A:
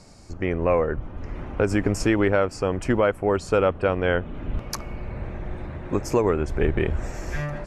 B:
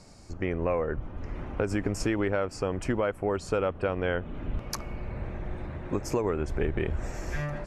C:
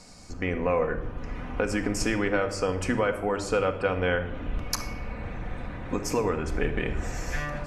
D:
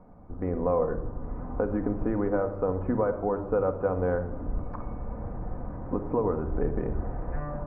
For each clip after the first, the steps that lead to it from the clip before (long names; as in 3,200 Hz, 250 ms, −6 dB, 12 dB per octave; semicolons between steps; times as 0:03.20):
downward compressor 2.5 to 1, threshold −22 dBFS, peak gain reduction 5 dB; level −3 dB
tilt shelving filter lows −3.5 dB, about 890 Hz; rectangular room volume 3,400 cubic metres, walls furnished, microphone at 1.9 metres; level +2 dB
low-pass filter 1,100 Hz 24 dB per octave